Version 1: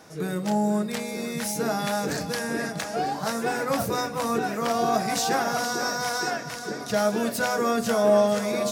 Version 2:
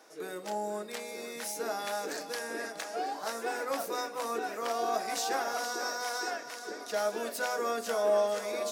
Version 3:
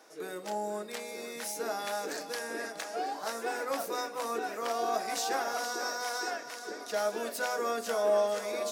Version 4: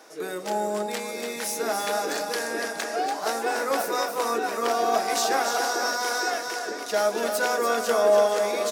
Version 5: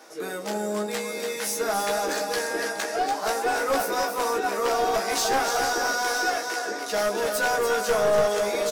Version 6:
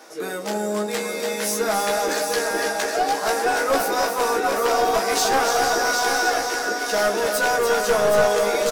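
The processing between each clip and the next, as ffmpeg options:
ffmpeg -i in.wav -af "highpass=frequency=310:width=0.5412,highpass=frequency=310:width=1.3066,volume=-7dB" out.wav
ffmpeg -i in.wav -af anull out.wav
ffmpeg -i in.wav -af "aecho=1:1:288:0.473,volume=7.5dB" out.wav
ffmpeg -i in.wav -filter_complex "[0:a]asplit=2[link_01][link_02];[link_02]adelay=15,volume=-4dB[link_03];[link_01][link_03]amix=inputs=2:normalize=0,aeval=exprs='clip(val(0),-1,0.0891)':channel_layout=same" out.wav
ffmpeg -i in.wav -af "aecho=1:1:770:0.447,volume=3.5dB" out.wav

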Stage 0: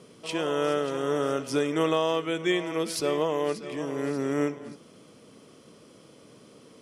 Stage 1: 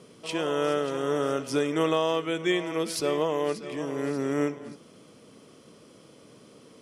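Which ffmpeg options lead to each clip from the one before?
ffmpeg -i in.wav -af anull out.wav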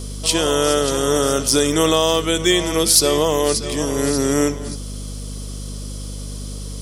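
ffmpeg -i in.wav -filter_complex "[0:a]aeval=exprs='val(0)+0.0126*(sin(2*PI*50*n/s)+sin(2*PI*2*50*n/s)/2+sin(2*PI*3*50*n/s)/3+sin(2*PI*4*50*n/s)/4+sin(2*PI*5*50*n/s)/5)':channel_layout=same,aexciter=amount=2.8:drive=9:freq=3500,asplit=2[link_01][link_02];[link_02]alimiter=limit=-17dB:level=0:latency=1:release=57,volume=0dB[link_03];[link_01][link_03]amix=inputs=2:normalize=0,volume=3.5dB" out.wav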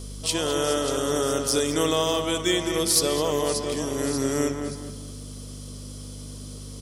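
ffmpeg -i in.wav -filter_complex "[0:a]asplit=2[link_01][link_02];[link_02]adelay=208,lowpass=frequency=2200:poles=1,volume=-5.5dB,asplit=2[link_03][link_04];[link_04]adelay=208,lowpass=frequency=2200:poles=1,volume=0.36,asplit=2[link_05][link_06];[link_06]adelay=208,lowpass=frequency=2200:poles=1,volume=0.36,asplit=2[link_07][link_08];[link_08]adelay=208,lowpass=frequency=2200:poles=1,volume=0.36[link_09];[link_01][link_03][link_05][link_07][link_09]amix=inputs=5:normalize=0,volume=-7.5dB" out.wav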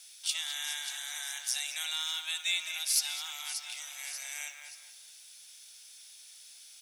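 ffmpeg -i in.wav -af "acrusher=bits=8:mix=0:aa=0.000001,highpass=frequency=2100:width_type=q:width=2.1,afreqshift=300,volume=-7.5dB" out.wav

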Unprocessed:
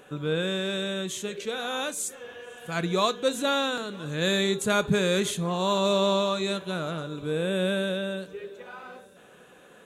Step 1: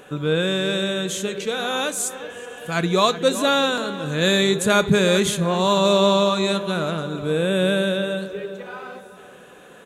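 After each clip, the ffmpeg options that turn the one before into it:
ffmpeg -i in.wav -filter_complex "[0:a]asplit=2[link_01][link_02];[link_02]adelay=375,lowpass=frequency=1900:poles=1,volume=-12dB,asplit=2[link_03][link_04];[link_04]adelay=375,lowpass=frequency=1900:poles=1,volume=0.41,asplit=2[link_05][link_06];[link_06]adelay=375,lowpass=frequency=1900:poles=1,volume=0.41,asplit=2[link_07][link_08];[link_08]adelay=375,lowpass=frequency=1900:poles=1,volume=0.41[link_09];[link_01][link_03][link_05][link_07][link_09]amix=inputs=5:normalize=0,volume=6.5dB" out.wav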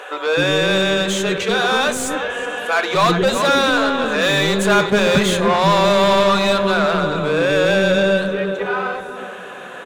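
ffmpeg -i in.wav -filter_complex "[0:a]asplit=2[link_01][link_02];[link_02]highpass=frequency=720:poles=1,volume=25dB,asoftclip=type=tanh:threshold=-4dB[link_03];[link_01][link_03]amix=inputs=2:normalize=0,lowpass=frequency=1700:poles=1,volume=-6dB,acrossover=split=430[link_04][link_05];[link_04]adelay=260[link_06];[link_06][link_05]amix=inputs=2:normalize=0,volume=-1dB" out.wav

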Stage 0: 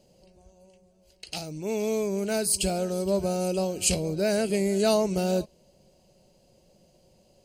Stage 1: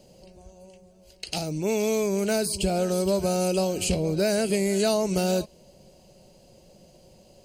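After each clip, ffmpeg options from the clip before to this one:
ffmpeg -i in.wav -filter_complex "[0:a]acrossover=split=960|4400[link_01][link_02][link_03];[link_01]acompressor=threshold=-29dB:ratio=4[link_04];[link_02]acompressor=threshold=-41dB:ratio=4[link_05];[link_03]acompressor=threshold=-40dB:ratio=4[link_06];[link_04][link_05][link_06]amix=inputs=3:normalize=0,volume=7dB" out.wav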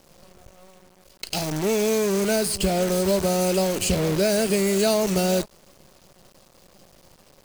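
ffmpeg -i in.wav -af "acrusher=bits=6:dc=4:mix=0:aa=0.000001,volume=2.5dB" out.wav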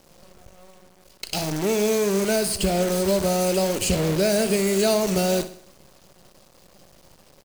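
ffmpeg -i in.wav -af "aecho=1:1:62|124|186|248|310:0.224|0.105|0.0495|0.0232|0.0109" out.wav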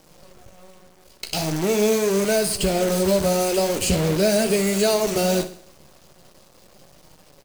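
ffmpeg -i in.wav -af "flanger=delay=6.4:depth=7.3:regen=-44:speed=0.42:shape=sinusoidal,volume=5.5dB" out.wav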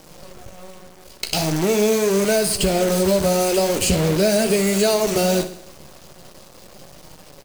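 ffmpeg -i in.wav -af "acompressor=threshold=-32dB:ratio=1.5,volume=7.5dB" out.wav

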